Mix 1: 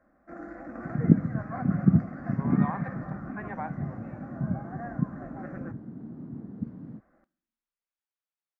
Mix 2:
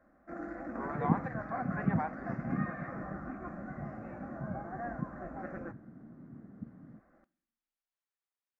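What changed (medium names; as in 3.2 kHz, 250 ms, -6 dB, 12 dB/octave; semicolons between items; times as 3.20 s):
speech: entry -1.60 s; second sound -10.5 dB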